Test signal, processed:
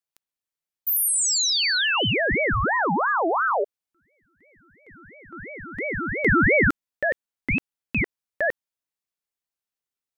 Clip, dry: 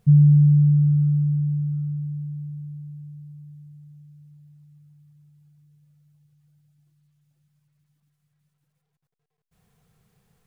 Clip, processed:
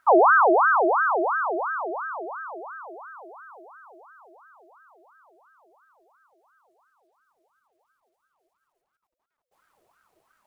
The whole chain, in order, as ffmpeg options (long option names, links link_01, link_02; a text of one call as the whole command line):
ffmpeg -i in.wav -af "aeval=exprs='val(0)*sin(2*PI*970*n/s+970*0.5/2.9*sin(2*PI*2.9*n/s))':channel_layout=same" out.wav